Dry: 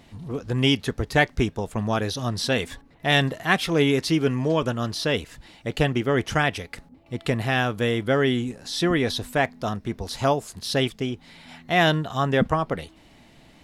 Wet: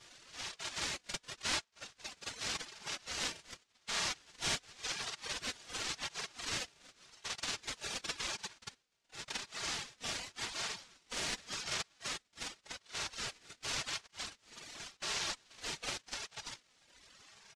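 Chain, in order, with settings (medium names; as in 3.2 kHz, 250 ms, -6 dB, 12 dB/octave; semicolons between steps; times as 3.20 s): octave divider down 2 oct, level 0 dB; band-pass sweep 1.7 kHz -> 3.6 kHz, 5.45–6.44 s; noise-vocoded speech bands 1; high-pass 540 Hz 6 dB/octave; comb 3.1 ms, depth 80%; reverse echo 38 ms -6.5 dB; wide varispeed 0.777×; reverb removal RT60 1.4 s; compression 3:1, threshold -43 dBFS, peak gain reduction 20 dB; ring modulator with a swept carrier 710 Hz, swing 55%, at 0.89 Hz; trim +6.5 dB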